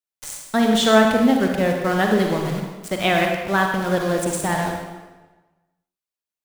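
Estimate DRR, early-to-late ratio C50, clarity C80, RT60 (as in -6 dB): 1.5 dB, 2.5 dB, 4.5 dB, 1.2 s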